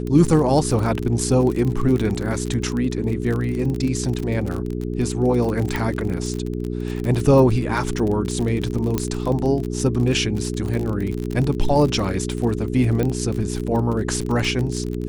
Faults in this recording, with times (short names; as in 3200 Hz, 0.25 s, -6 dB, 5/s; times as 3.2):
crackle 37/s -24 dBFS
hum 60 Hz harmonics 7 -26 dBFS
5.76 pop -10 dBFS
8.98 pop -7 dBFS
13.03 pop -11 dBFS